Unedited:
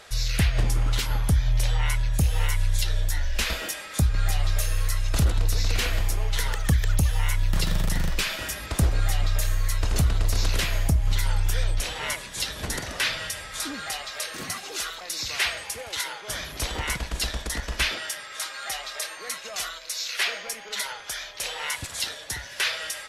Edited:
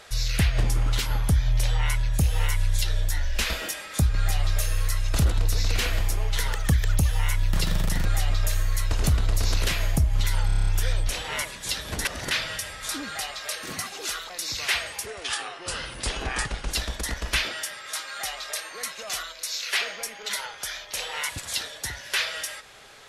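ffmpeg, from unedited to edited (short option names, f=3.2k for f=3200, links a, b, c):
-filter_complex "[0:a]asplit=13[a][b][c][d][e][f][g][h][i][j][k][l][m];[a]atrim=end=8.052[n];[b]atrim=start=8.968:end=11.412[o];[c]atrim=start=11.378:end=11.412[p];[d]atrim=start=11.378:end=11.412[q];[e]atrim=start=11.378:end=11.412[r];[f]atrim=start=11.378:end=11.412[s];[g]atrim=start=11.378:end=11.412[t];[h]atrim=start=11.378:end=11.412[u];[i]atrim=start=11.378:end=12.762[v];[j]atrim=start=12.758:end=13.022,asetpts=PTS-STARTPTS,areverse[w];[k]atrim=start=13.018:end=15.774[x];[l]atrim=start=15.77:end=17.17,asetpts=PTS-STARTPTS,asetrate=37485,aresample=44100,atrim=end_sample=72635,asetpts=PTS-STARTPTS[y];[m]atrim=start=17.166[z];[n][o]acrossfade=d=0.004:c1=hsin:c2=hsin[aa];[aa][p]acrossfade=d=0.004:c1=hsin:c2=hsin[ab];[ab][q]acrossfade=d=0.004:c1=hsin:c2=hsin[ac];[ac][r]acrossfade=d=0.004:c1=hsin:c2=hsin[ad];[ad][s]acrossfade=d=0.004:c1=hsin:c2=hsin[ae];[ae][t]acrossfade=d=0.004:c1=hsin:c2=hsin[af];[af][u]acrossfade=d=0.004:c1=hsin:c2=hsin[ag];[ag][v]acrossfade=d=0.004:c1=hsin:c2=hsin[ah];[ah][w]acrossfade=d=0.004:c1=hsin:c2=hsin[ai];[ai][x]acrossfade=d=0.004:c1=hsin:c2=hsin[aj];[aj][y]acrossfade=d=0.004:c1=hsin:c2=hsin[ak];[ak][z]acrossfade=d=0.004:c1=hsin:c2=hsin"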